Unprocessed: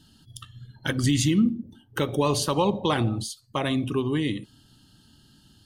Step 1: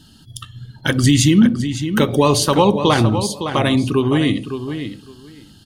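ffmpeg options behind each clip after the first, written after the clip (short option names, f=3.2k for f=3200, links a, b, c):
-filter_complex "[0:a]asplit=2[a][b];[b]adelay=560,lowpass=f=4.9k:p=1,volume=-9dB,asplit=2[c][d];[d]adelay=560,lowpass=f=4.9k:p=1,volume=0.16[e];[a][c][e]amix=inputs=3:normalize=0,volume=9dB"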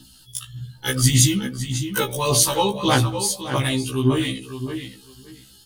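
-af "aemphasis=mode=production:type=75kf,aphaser=in_gain=1:out_gain=1:delay=2.4:decay=0.6:speed=1.7:type=sinusoidal,afftfilt=real='re*1.73*eq(mod(b,3),0)':imag='im*1.73*eq(mod(b,3),0)':win_size=2048:overlap=0.75,volume=-6.5dB"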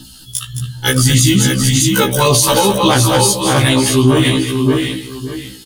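-filter_complex "[0:a]asplit=2[a][b];[b]aecho=0:1:214|613:0.316|0.422[c];[a][c]amix=inputs=2:normalize=0,alimiter=level_in=12dB:limit=-1dB:release=50:level=0:latency=1,volume=-1dB"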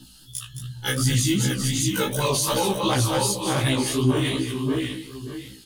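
-af "flanger=delay=15:depth=7:speed=2.7,volume=-8dB"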